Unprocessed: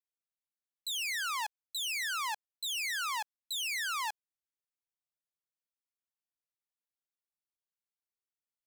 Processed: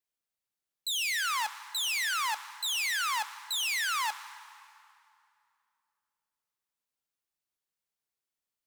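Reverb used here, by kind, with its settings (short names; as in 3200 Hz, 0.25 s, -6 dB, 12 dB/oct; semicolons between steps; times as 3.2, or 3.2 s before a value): plate-style reverb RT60 2.6 s, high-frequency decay 0.8×, DRR 11.5 dB; gain +4 dB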